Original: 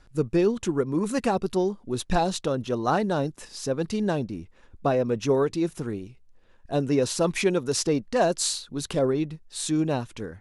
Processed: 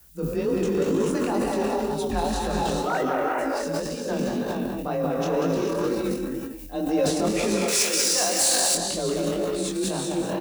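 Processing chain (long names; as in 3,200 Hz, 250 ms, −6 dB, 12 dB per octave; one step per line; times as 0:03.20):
0:02.83–0:03.37: three sine waves on the formant tracks
single-tap delay 188 ms −6 dB
reverb whose tail is shaped and stops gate 460 ms rising, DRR −1 dB
background noise violet −49 dBFS
0:05.87–0:07.06: comb filter 3.9 ms, depth 68%
frequency shifter +31 Hz
transient designer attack −3 dB, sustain +10 dB
0:07.68–0:08.75: spectral tilt +4 dB per octave
hard clipping −12 dBFS, distortion −18 dB
chorus effect 2 Hz, delay 18 ms, depth 6.6 ms
level −1.5 dB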